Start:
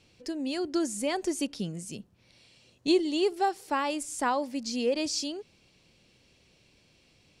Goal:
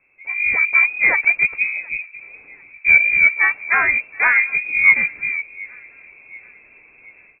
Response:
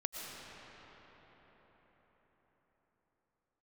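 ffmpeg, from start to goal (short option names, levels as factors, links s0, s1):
-filter_complex "[0:a]equalizer=f=160:t=o:w=0.33:g=-7,equalizer=f=500:t=o:w=0.33:g=7,equalizer=f=800:t=o:w=0.33:g=-6,dynaudnorm=f=250:g=3:m=4.47,asplit=2[s0][s1];[s1]adelay=731,lowpass=f=1200:p=1,volume=0.0708,asplit=2[s2][s3];[s3]adelay=731,lowpass=f=1200:p=1,volume=0.53,asplit=2[s4][s5];[s5]adelay=731,lowpass=f=1200:p=1,volume=0.53,asplit=2[s6][s7];[s7]adelay=731,lowpass=f=1200:p=1,volume=0.53[s8];[s0][s2][s4][s6][s8]amix=inputs=5:normalize=0,asplit=2[s9][s10];[s10]asetrate=52444,aresample=44100,atempo=0.840896,volume=0.631[s11];[s9][s11]amix=inputs=2:normalize=0,asplit=2[s12][s13];[s13]acontrast=68,volume=0.944[s14];[s12][s14]amix=inputs=2:normalize=0,lowpass=f=2300:t=q:w=0.5098,lowpass=f=2300:t=q:w=0.6013,lowpass=f=2300:t=q:w=0.9,lowpass=f=2300:t=q:w=2.563,afreqshift=-2700,volume=0.355"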